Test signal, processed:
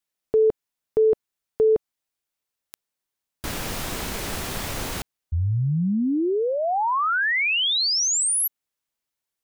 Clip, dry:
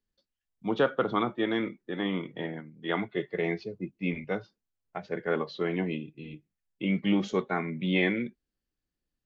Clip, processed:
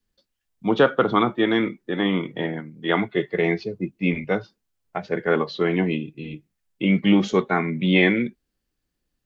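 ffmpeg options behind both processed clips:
ffmpeg -i in.wav -af "adynamicequalizer=threshold=0.00501:dfrequency=570:dqfactor=3.8:tfrequency=570:tqfactor=3.8:attack=5:release=100:ratio=0.375:range=2:mode=cutabove:tftype=bell,volume=8.5dB" out.wav

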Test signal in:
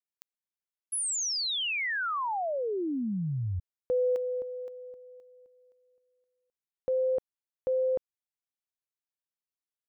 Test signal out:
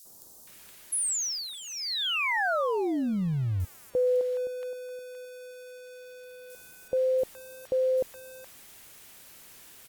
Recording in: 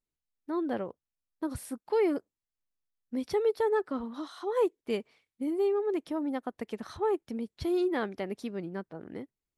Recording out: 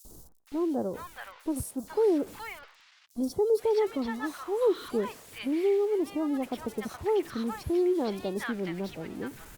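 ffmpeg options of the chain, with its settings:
ffmpeg -i in.wav -filter_complex "[0:a]aeval=exprs='val(0)+0.5*0.00841*sgn(val(0))':channel_layout=same,acrossover=split=1000|4900[link_01][link_02][link_03];[link_01]adelay=50[link_04];[link_02]adelay=470[link_05];[link_04][link_05][link_03]amix=inputs=3:normalize=0,volume=2dB" -ar 48000 -c:a libopus -b:a 64k out.opus

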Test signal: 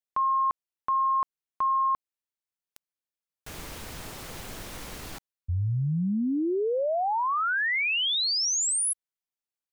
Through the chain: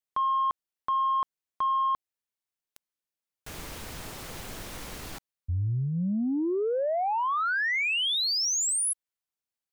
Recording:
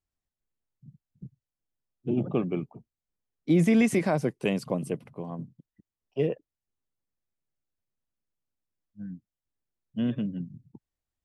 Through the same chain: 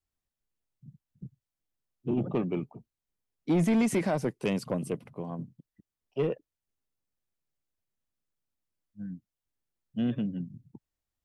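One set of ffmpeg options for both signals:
ffmpeg -i in.wav -af "adynamicequalizer=threshold=0.00501:dfrequency=150:dqfactor=6.8:tfrequency=150:tqfactor=6.8:attack=5:release=100:ratio=0.375:range=2.5:mode=cutabove:tftype=bell,asoftclip=type=tanh:threshold=-19.5dB" out.wav

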